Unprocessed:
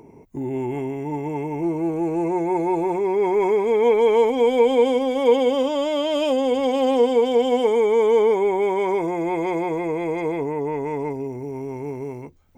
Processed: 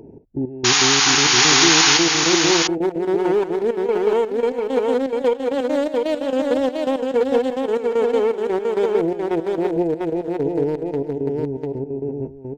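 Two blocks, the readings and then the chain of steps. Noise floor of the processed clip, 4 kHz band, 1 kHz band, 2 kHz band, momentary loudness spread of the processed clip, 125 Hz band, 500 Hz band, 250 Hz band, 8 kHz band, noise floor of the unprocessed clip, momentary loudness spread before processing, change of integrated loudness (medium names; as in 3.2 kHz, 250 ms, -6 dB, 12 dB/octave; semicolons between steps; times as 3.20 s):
-34 dBFS, +16.0 dB, 0.0 dB, +12.0 dB, 13 LU, +3.0 dB, -0.5 dB, +2.0 dB, no reading, -42 dBFS, 13 LU, +3.0 dB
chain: local Wiener filter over 41 samples; peaking EQ 180 Hz -3 dB 1.2 oct; compression 10:1, threshold -23 dBFS, peak gain reduction 11.5 dB; trance gate "xx..x..x." 166 bpm -12 dB; painted sound noise, 0.64–1.98 s, 720–7000 Hz -24 dBFS; on a send: delay 697 ms -3 dB; on the sum: trim +8 dB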